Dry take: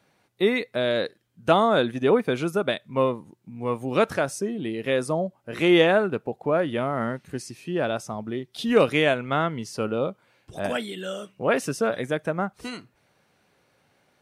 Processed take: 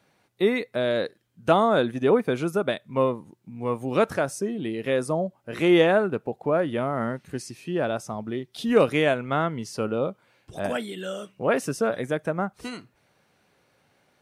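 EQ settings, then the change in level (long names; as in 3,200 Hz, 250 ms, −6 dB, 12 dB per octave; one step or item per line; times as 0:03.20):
dynamic equaliser 3,300 Hz, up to −4 dB, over −39 dBFS, Q 0.76
0.0 dB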